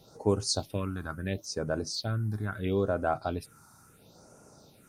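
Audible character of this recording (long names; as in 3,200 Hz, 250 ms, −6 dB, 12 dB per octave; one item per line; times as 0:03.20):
phaser sweep stages 4, 0.74 Hz, lowest notch 480–3,800 Hz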